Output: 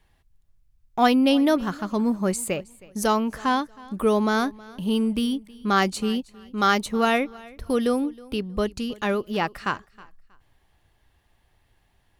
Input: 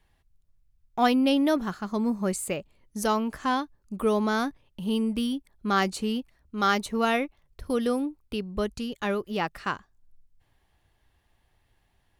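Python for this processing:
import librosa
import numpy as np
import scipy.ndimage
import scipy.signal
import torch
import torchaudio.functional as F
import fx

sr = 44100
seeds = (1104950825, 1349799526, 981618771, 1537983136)

y = fx.echo_feedback(x, sr, ms=318, feedback_pct=25, wet_db=-22)
y = y * 10.0 ** (3.5 / 20.0)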